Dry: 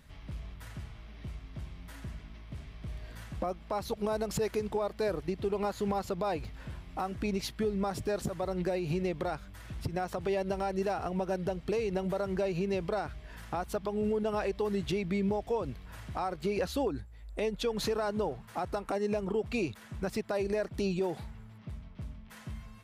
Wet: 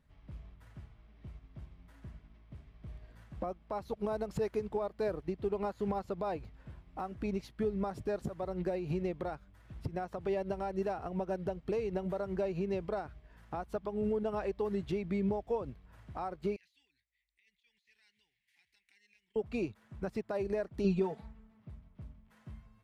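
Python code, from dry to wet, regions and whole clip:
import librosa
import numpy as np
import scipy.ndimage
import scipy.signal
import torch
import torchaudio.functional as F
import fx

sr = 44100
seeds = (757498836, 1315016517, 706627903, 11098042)

y = fx.chain(x, sr, fx.ellip_highpass(hz=2000.0, order=4, stop_db=40),
    fx.over_compress(threshold_db=-50.0, ratio=-1.0),
    fx.high_shelf(hz=3800.0, db=-9.0), at=(16.56, 19.36))
y = fx.chain(y, sr, fx.high_shelf(hz=11000.0, db=-11.5),
    fx.comb(ms=4.5, depth=0.85), at=(20.84, 21.6))
y = fx.high_shelf(y, sr, hz=2400.0, db=-10.0)
y = fx.upward_expand(y, sr, threshold_db=-49.0, expansion=1.5)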